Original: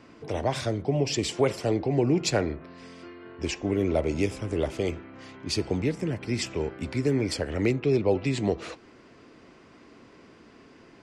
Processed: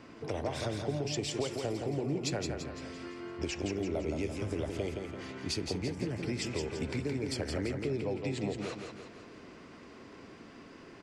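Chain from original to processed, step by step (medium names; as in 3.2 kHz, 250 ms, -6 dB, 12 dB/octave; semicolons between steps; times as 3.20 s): compression, threshold -32 dBFS, peak gain reduction 14 dB; feedback delay 169 ms, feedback 48%, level -5 dB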